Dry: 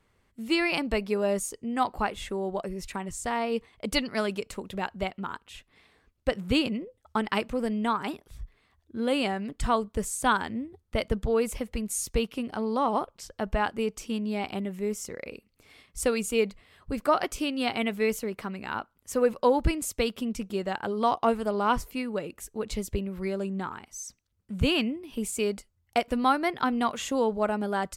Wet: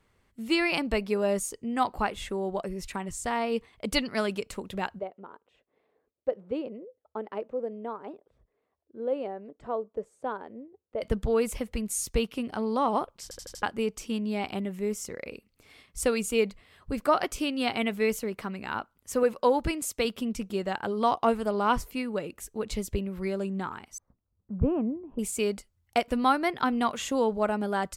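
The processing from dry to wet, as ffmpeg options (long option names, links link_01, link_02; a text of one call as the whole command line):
ffmpeg -i in.wav -filter_complex "[0:a]asplit=3[link_01][link_02][link_03];[link_01]afade=type=out:start_time=4.98:duration=0.02[link_04];[link_02]bandpass=frequency=500:width_type=q:width=2.3,afade=type=in:start_time=4.98:duration=0.02,afade=type=out:start_time=11.01:duration=0.02[link_05];[link_03]afade=type=in:start_time=11.01:duration=0.02[link_06];[link_04][link_05][link_06]amix=inputs=3:normalize=0,asettb=1/sr,asplit=3[link_07][link_08][link_09];[link_07]atrim=end=19.234[link_10];[link_08]atrim=start=19.23:end=20.05,asetpts=PTS-STARTPTS,afade=type=in:duration=0.004:curve=qsin,afade=type=out:start_time=0.816:duration=0.004:curve=qsin,lowshelf=frequency=150:gain=-9.5[link_11];[link_09]atrim=start=20.046[link_12];[link_10][link_11]acrossfade=duration=0.004:curve1=hsin:curve2=qsin[link_13];[link_13][link_12]acrossfade=duration=0.004:curve1=qsin:curve2=hsin,asettb=1/sr,asplit=3[link_14][link_15][link_16];[link_14]atrim=end=23.984[link_17];[link_15]atrim=start=23.98:end=25.19,asetpts=PTS-STARTPTS,afade=type=in:duration=0.004:curve=qsin,afade=type=out:start_time=1.206:duration=0.004:curve=qsin,lowpass=frequency=1100:width=0.5412,lowpass=frequency=1100:width=1.3066[link_18];[link_16]atrim=start=25.186[link_19];[link_17][link_18]acrossfade=duration=0.004:curve1=hsin:curve2=qsin[link_20];[link_20][link_19]acrossfade=duration=0.004:curve1=qsin:curve2=hsin,asplit=6[link_21][link_22][link_23][link_24][link_25][link_26];[link_21]atrim=end=13.312[link_27];[link_22]atrim=start=13.228:end=13.312[link_28];[link_23]atrim=start=13.228:end=13.312[link_29];[link_24]atrim=start=13.228:end=13.312[link_30];[link_25]atrim=start=13.228:end=13.312[link_31];[link_26]atrim=start=13.628[link_32];[link_27][link_28]acrossfade=duration=0.004:curve1=hsin:curve2=hsin[link_33];[link_33][link_29]acrossfade=duration=0.004:curve1=hsin:curve2=hsin[link_34];[link_34][link_30]acrossfade=duration=0.004:curve1=hsin:curve2=hsin[link_35];[link_35][link_31]acrossfade=duration=0.004:curve1=hsin:curve2=hsin[link_36];[link_36][link_32]acrossfade=duration=0.004:curve1=hsin:curve2=hsin" out.wav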